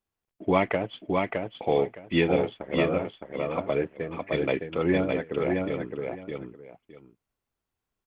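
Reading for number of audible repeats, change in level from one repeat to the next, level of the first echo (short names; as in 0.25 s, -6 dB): 2, -14.0 dB, -3.5 dB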